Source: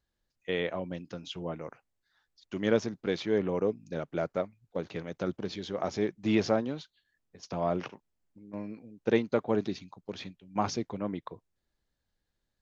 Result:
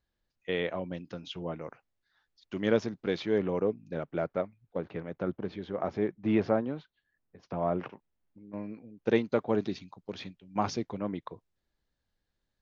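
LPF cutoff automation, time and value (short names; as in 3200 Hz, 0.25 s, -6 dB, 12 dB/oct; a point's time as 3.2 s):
5100 Hz
from 3.62 s 2900 Hz
from 4.78 s 2000 Hz
from 7.89 s 3100 Hz
from 9.04 s 6000 Hz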